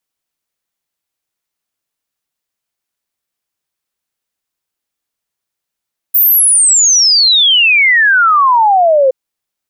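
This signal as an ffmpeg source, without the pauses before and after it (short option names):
-f lavfi -i "aevalsrc='0.531*clip(min(t,2.97-t)/0.01,0,1)*sin(2*PI*15000*2.97/log(510/15000)*(exp(log(510/15000)*t/2.97)-1))':d=2.97:s=44100"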